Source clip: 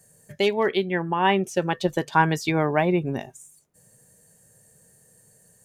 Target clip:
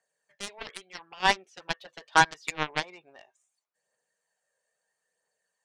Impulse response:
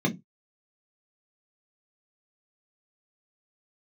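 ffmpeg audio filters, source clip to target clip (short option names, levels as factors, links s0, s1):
-af "asuperpass=centerf=1800:order=4:qfactor=0.51,aphaser=in_gain=1:out_gain=1:delay=2:decay=0.33:speed=0.76:type=triangular,aeval=exprs='0.531*(cos(1*acos(clip(val(0)/0.531,-1,1)))-cos(1*PI/2))+0.0944*(cos(7*acos(clip(val(0)/0.531,-1,1)))-cos(7*PI/2))':c=same"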